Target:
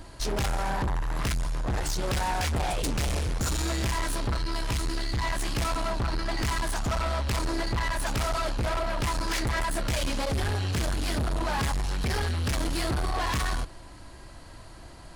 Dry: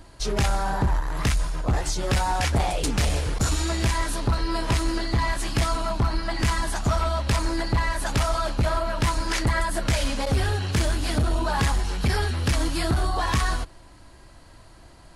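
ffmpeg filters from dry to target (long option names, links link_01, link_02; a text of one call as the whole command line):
ffmpeg -i in.wav -filter_complex "[0:a]asettb=1/sr,asplit=3[link_01][link_02][link_03];[link_01]atrim=end=4.374[link_04];[link_02]atrim=start=4.37:end=5.24,asetpts=PTS-STARTPTS,afade=type=in:duration=0.004:curve=qsin,afade=type=out:start_time=0.866:duration=0.004:curve=qsin,equalizer=frequency=470:width=0.36:gain=-7[link_05];[link_03]atrim=start=5.236[link_06];[link_04][link_05]acrossfade=duration=0.004:curve1=hsin:curve2=qsin[link_07];[link_07][link_06]acrossfade=duration=0.004:curve1=qsin:curve2=hsin,asoftclip=type=tanh:threshold=-28dB,volume=3dB" out.wav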